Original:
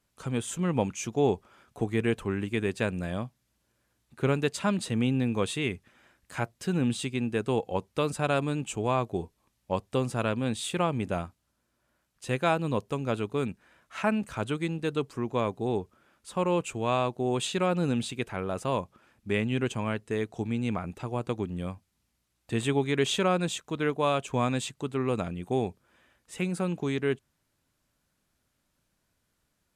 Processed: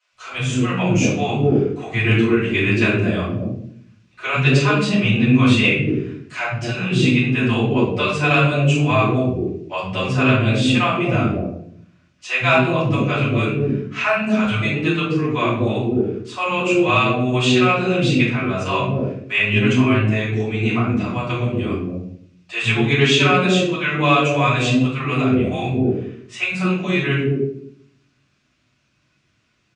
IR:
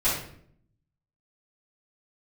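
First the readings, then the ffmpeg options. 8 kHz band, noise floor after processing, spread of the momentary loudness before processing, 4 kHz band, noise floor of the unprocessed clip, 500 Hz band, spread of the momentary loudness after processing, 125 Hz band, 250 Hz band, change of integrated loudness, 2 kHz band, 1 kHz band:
+5.0 dB, −64 dBFS, 8 LU, +13.5 dB, −77 dBFS, +8.5 dB, 9 LU, +13.5 dB, +12.0 dB, +11.5 dB, +16.5 dB, +10.0 dB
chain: -filter_complex "[0:a]highpass=110,equalizer=frequency=520:width_type=q:width=4:gain=-4,equalizer=frequency=870:width_type=q:width=4:gain=-8,equalizer=frequency=2600:width_type=q:width=4:gain=7,lowpass=frequency=6300:width=0.5412,lowpass=frequency=6300:width=1.3066,acrossover=split=180|560[link_01][link_02][link_03];[link_01]adelay=110[link_04];[link_02]adelay=230[link_05];[link_04][link_05][link_03]amix=inputs=3:normalize=0[link_06];[1:a]atrim=start_sample=2205[link_07];[link_06][link_07]afir=irnorm=-1:irlink=0,aeval=exprs='0.708*(cos(1*acos(clip(val(0)/0.708,-1,1)))-cos(1*PI/2))+0.0224*(cos(3*acos(clip(val(0)/0.708,-1,1)))-cos(3*PI/2))':channel_layout=same,volume=1.5dB"

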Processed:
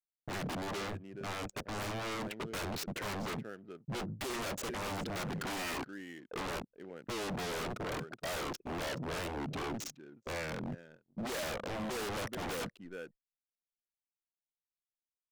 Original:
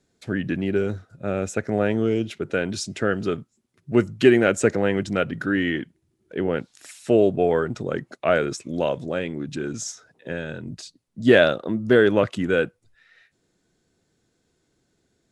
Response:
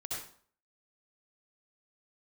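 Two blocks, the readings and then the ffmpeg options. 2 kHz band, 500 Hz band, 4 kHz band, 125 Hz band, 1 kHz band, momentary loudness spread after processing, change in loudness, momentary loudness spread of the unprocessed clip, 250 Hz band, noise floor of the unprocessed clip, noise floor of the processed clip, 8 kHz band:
−14.5 dB, −19.5 dB, −7.5 dB, −13.5 dB, −8.5 dB, 8 LU, −16.5 dB, 15 LU, −18.0 dB, −71 dBFS, below −85 dBFS, −8.0 dB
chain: -af "adynamicsmooth=sensitivity=7.5:basefreq=770,anlmdn=0.398,alimiter=limit=-10dB:level=0:latency=1:release=60,aecho=1:1:423:0.0668,agate=range=-30dB:threshold=-54dB:ratio=16:detection=peak,volume=23dB,asoftclip=hard,volume=-23dB,equalizer=frequency=74:width_type=o:width=1.1:gain=-13.5,aeval=exprs='0.0224*(abs(mod(val(0)/0.0224+3,4)-2)-1)':channel_layout=same"

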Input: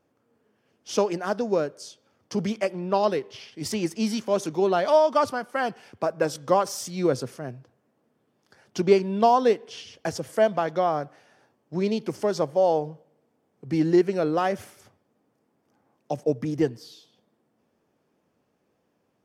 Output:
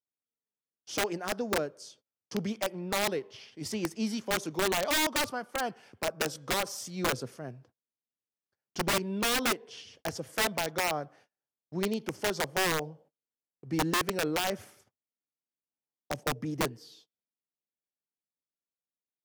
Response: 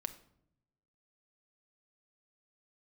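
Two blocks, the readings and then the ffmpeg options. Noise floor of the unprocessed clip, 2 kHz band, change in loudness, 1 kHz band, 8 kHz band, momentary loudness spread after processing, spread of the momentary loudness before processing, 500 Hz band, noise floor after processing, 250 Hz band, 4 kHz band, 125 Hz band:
−72 dBFS, +3.0 dB, −6.5 dB, −8.0 dB, +3.5 dB, 13 LU, 14 LU, −11.0 dB, below −85 dBFS, −7.5 dB, +4.0 dB, −6.0 dB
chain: -af "agate=range=-32dB:threshold=-52dB:ratio=16:detection=peak,aeval=exprs='(mod(6.31*val(0)+1,2)-1)/6.31':channel_layout=same,volume=-6dB"

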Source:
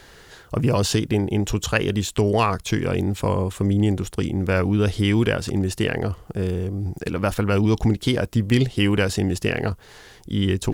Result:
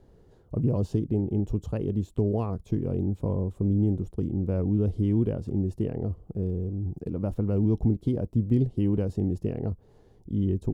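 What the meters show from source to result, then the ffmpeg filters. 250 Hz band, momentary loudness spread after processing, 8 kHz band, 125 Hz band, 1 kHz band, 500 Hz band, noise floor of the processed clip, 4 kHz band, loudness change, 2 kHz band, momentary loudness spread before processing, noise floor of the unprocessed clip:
−4.5 dB, 7 LU, below −25 dB, −4.0 dB, −17.5 dB, −8.0 dB, −57 dBFS, below −25 dB, −5.5 dB, below −25 dB, 7 LU, −48 dBFS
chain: -af "firequalizer=gain_entry='entry(230,0);entry(1600,-26);entry(11000,-23)':delay=0.05:min_phase=1,volume=-4dB"

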